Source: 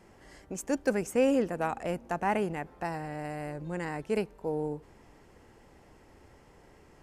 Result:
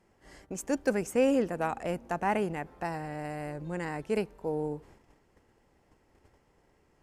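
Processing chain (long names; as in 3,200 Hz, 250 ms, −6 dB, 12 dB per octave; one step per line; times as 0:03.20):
noise gate −54 dBFS, range −10 dB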